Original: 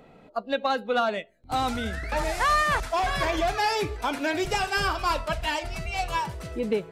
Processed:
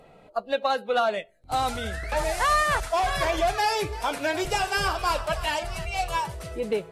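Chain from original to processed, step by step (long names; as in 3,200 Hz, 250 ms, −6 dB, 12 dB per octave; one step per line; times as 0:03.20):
graphic EQ with 15 bands 250 Hz −7 dB, 630 Hz +3 dB, 10,000 Hz +5 dB
0:03.61–0:05.85: echo with shifted repeats 314 ms, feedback 46%, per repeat +48 Hz, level −16 dB
Ogg Vorbis 48 kbit/s 44,100 Hz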